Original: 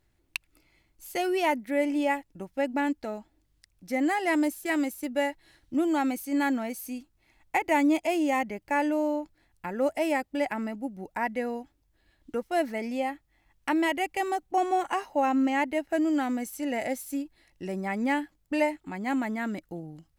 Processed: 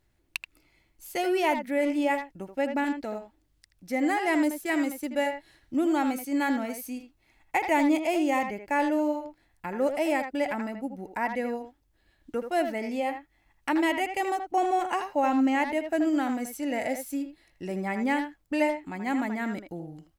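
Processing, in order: speakerphone echo 80 ms, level -7 dB

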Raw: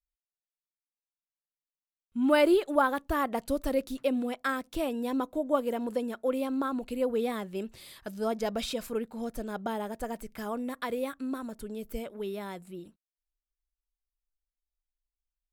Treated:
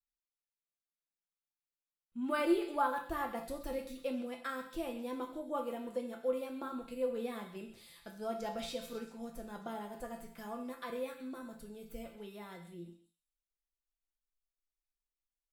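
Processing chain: feedback comb 170 Hz, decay 0.18 s, harmonics all, mix 80%; repeats whose band climbs or falls 131 ms, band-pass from 3.2 kHz, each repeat 0.7 oct, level -10 dB; gated-style reverb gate 230 ms falling, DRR 5 dB; trim -2 dB

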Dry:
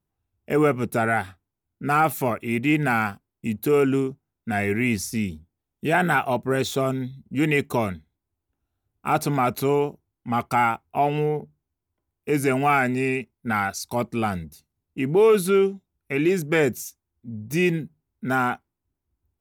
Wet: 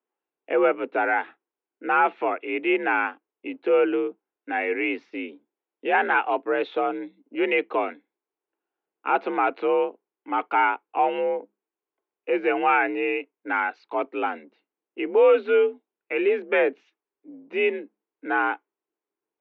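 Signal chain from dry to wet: mistuned SSB +56 Hz 270–3000 Hz

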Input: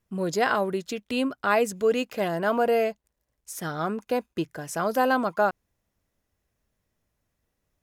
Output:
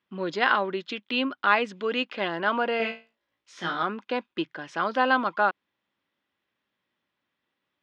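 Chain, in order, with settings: cabinet simulation 330–3900 Hz, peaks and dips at 450 Hz -9 dB, 670 Hz -10 dB, 3.3 kHz +5 dB; 2.78–3.83 s: flutter echo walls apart 3 m, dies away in 0.29 s; trim +4 dB

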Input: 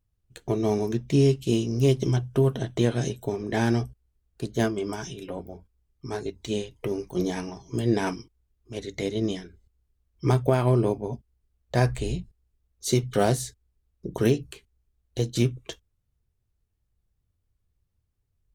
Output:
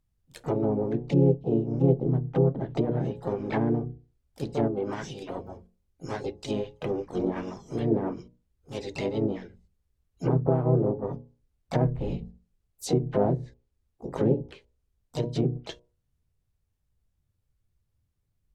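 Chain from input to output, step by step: hum notches 60/120/180/240/300/360/420/480/540 Hz; harmony voices +4 st -4 dB, +12 st -15 dB; low-pass that closes with the level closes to 600 Hz, closed at -19.5 dBFS; trim -1.5 dB

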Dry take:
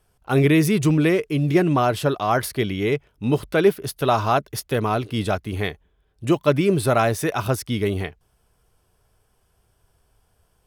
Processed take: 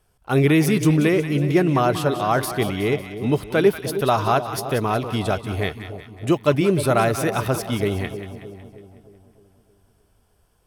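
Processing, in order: two-band feedback delay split 810 Hz, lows 310 ms, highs 184 ms, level -10.5 dB

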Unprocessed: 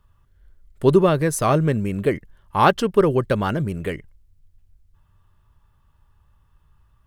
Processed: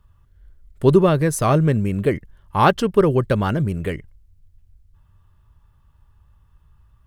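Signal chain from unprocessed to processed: peaking EQ 61 Hz +5.5 dB 3 oct

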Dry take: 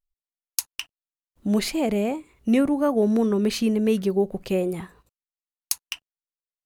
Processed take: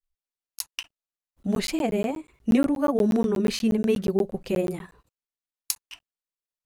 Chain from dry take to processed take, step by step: granulator, grains 20 per s, spray 14 ms, pitch spread up and down by 0 st; crackling interface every 0.12 s, samples 512, zero, from 0.47 s

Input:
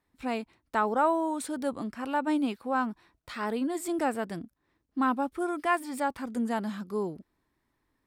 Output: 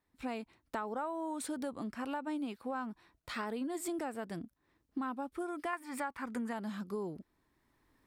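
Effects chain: recorder AGC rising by 8.1 dB/s; 5.73–6.53 s: high-order bell 1.5 kHz +8.5 dB; compression 6:1, threshold -30 dBFS, peak gain reduction 13 dB; trim -4.5 dB

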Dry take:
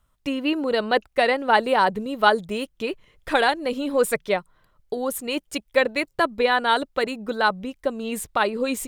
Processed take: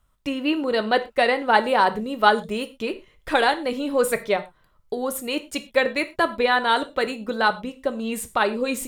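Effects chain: gated-style reverb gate 140 ms falling, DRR 9 dB

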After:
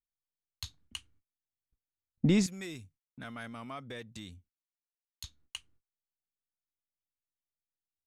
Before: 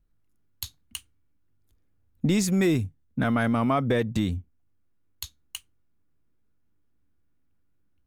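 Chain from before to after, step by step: 2.46–5.24 s: pre-emphasis filter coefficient 0.9; gate -60 dBFS, range -31 dB; distance through air 68 m; trim -2 dB

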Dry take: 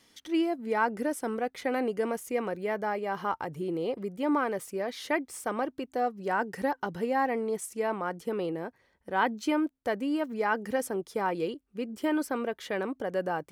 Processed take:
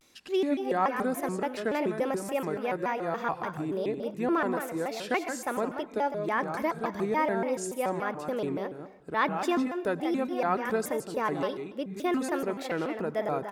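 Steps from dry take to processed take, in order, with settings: delay 171 ms -8 dB; on a send at -14 dB: reverberation RT60 1.0 s, pre-delay 55 ms; on the sum: vibrato with a chosen wave square 3.5 Hz, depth 250 cents

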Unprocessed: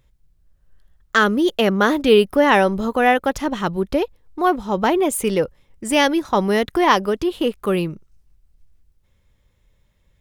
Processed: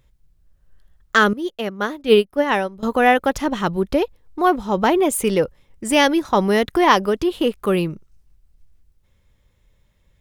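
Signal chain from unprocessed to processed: 1.33–2.83 s: upward expansion 2.5:1, over -21 dBFS; trim +1 dB

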